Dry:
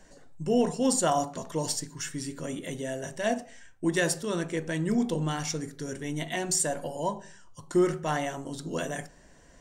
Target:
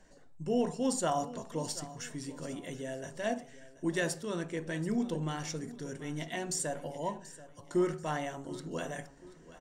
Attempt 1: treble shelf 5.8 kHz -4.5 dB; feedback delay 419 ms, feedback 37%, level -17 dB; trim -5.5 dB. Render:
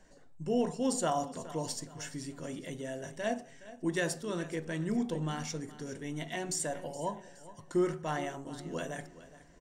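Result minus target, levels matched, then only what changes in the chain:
echo 314 ms early
change: feedback delay 733 ms, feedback 37%, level -17 dB

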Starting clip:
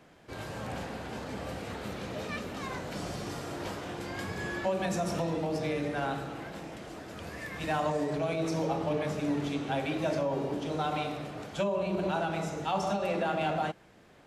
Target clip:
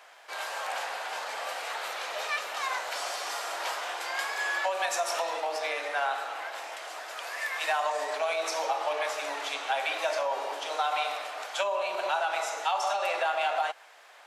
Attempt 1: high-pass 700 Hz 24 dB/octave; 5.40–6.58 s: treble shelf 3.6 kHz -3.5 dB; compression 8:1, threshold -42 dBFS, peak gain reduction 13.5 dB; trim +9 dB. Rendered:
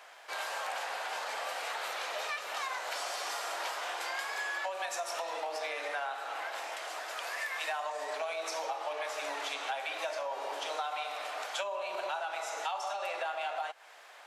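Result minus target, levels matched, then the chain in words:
compression: peak gain reduction +8 dB
high-pass 700 Hz 24 dB/octave; 5.40–6.58 s: treble shelf 3.6 kHz -3.5 dB; compression 8:1, threshold -33 dBFS, peak gain reduction 6 dB; trim +9 dB

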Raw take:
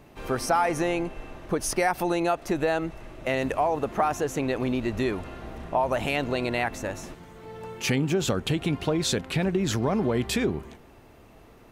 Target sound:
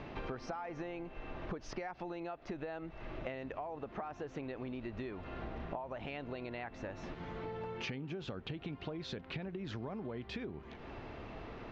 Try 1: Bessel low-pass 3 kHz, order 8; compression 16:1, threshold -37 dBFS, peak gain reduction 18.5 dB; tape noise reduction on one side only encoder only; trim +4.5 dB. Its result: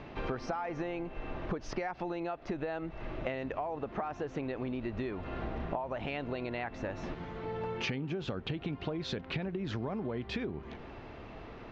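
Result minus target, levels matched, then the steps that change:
compression: peak gain reduction -6 dB
change: compression 16:1, threshold -43.5 dBFS, peak gain reduction 24.5 dB

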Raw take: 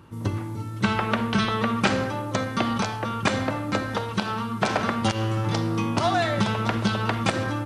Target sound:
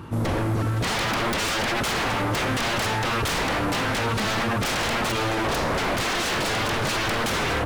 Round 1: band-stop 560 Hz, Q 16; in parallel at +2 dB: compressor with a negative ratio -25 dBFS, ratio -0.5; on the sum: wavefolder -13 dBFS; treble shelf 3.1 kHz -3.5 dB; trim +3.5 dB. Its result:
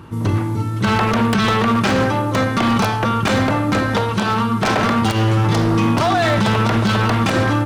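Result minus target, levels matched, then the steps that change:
wavefolder: distortion -24 dB
change: wavefolder -22.5 dBFS

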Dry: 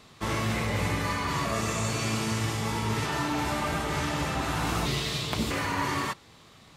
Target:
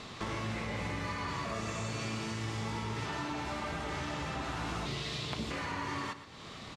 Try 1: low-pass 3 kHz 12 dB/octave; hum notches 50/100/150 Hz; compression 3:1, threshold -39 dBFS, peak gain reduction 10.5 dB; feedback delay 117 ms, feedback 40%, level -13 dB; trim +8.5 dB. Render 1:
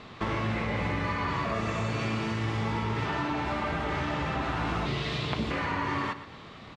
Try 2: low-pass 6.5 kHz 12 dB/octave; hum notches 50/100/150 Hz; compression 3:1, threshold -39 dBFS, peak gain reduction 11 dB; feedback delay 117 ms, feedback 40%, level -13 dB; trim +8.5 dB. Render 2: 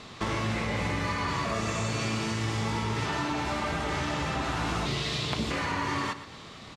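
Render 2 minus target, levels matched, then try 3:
compression: peak gain reduction -7 dB
low-pass 6.5 kHz 12 dB/octave; hum notches 50/100/150 Hz; compression 3:1, threshold -49.5 dBFS, peak gain reduction 18 dB; feedback delay 117 ms, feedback 40%, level -13 dB; trim +8.5 dB

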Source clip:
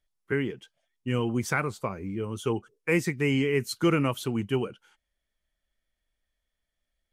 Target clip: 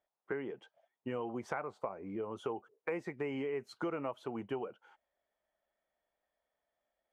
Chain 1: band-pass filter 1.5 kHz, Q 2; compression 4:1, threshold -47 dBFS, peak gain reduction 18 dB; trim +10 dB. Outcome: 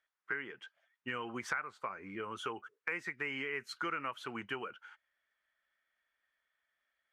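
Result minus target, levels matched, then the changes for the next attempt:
2 kHz band +9.0 dB
change: band-pass filter 720 Hz, Q 2

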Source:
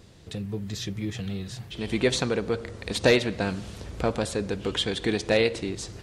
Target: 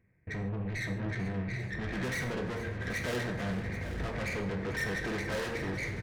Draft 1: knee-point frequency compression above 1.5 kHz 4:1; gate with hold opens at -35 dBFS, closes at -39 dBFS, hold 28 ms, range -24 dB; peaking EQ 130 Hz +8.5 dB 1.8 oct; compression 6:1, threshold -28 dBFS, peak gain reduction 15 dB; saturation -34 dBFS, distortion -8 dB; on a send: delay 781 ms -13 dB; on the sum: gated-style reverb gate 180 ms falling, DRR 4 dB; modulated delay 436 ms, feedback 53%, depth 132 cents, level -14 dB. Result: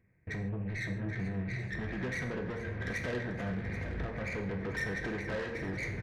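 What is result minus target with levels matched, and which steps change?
compression: peak gain reduction +15 dB
remove: compression 6:1, threshold -28 dBFS, peak gain reduction 15 dB

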